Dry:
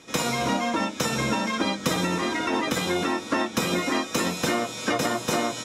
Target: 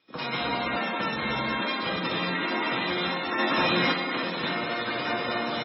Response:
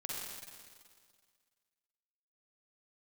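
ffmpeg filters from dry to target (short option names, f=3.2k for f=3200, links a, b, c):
-filter_complex "[0:a]asplit=2[a][b];[b]alimiter=limit=-22dB:level=0:latency=1:release=36,volume=3dB[c];[a][c]amix=inputs=2:normalize=0,highshelf=f=7k:g=-3.5,asplit=2[d][e];[e]aecho=0:1:72.89|192.4|253.6|285.7:0.631|0.891|0.501|0.562[f];[d][f]amix=inputs=2:normalize=0,acrossover=split=4900[g][h];[h]acompressor=threshold=-33dB:ratio=4:attack=1:release=60[i];[g][i]amix=inputs=2:normalize=0,asplit=3[j][k][l];[j]afade=t=out:st=3.38:d=0.02[m];[k]aeval=exprs='0.562*sin(PI/2*1.41*val(0)/0.562)':c=same,afade=t=in:st=3.38:d=0.02,afade=t=out:st=3.91:d=0.02[n];[l]afade=t=in:st=3.91:d=0.02[o];[m][n][o]amix=inputs=3:normalize=0,flanger=delay=6.4:depth=9.2:regen=-75:speed=0.43:shape=triangular,tiltshelf=f=930:g=-4.5,afwtdn=0.0398,asoftclip=type=tanh:threshold=-8.5dB,volume=-6dB" -ar 22050 -c:a libmp3lame -b:a 16k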